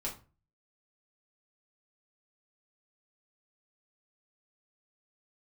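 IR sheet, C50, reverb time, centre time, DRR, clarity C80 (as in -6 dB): 10.0 dB, 0.35 s, 20 ms, -4.5 dB, 16.0 dB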